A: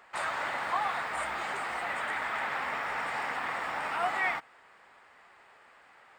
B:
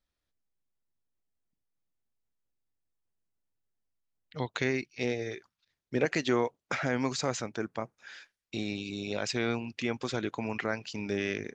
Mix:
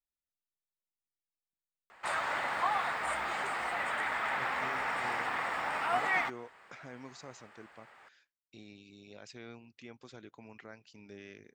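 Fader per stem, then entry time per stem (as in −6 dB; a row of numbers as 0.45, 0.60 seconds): −0.5, −18.0 decibels; 1.90, 0.00 seconds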